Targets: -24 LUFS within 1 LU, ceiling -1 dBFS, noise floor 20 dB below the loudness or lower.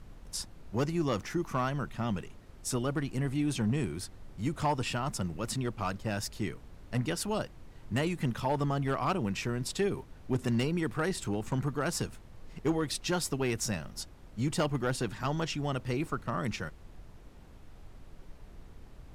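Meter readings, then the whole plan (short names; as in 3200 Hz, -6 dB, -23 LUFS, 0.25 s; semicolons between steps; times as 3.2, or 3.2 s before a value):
clipped 0.4%; flat tops at -22.0 dBFS; noise floor -52 dBFS; noise floor target -53 dBFS; loudness -33.0 LUFS; peak -22.0 dBFS; loudness target -24.0 LUFS
-> clip repair -22 dBFS; noise print and reduce 6 dB; gain +9 dB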